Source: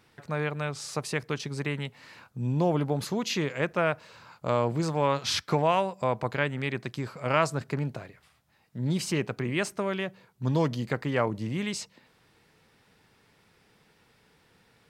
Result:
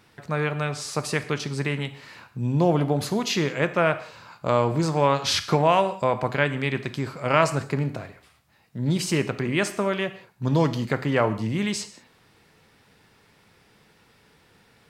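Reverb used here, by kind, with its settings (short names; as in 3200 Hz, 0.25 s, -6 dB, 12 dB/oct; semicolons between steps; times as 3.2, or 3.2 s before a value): non-linear reverb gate 0.22 s falling, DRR 10 dB; gain +4.5 dB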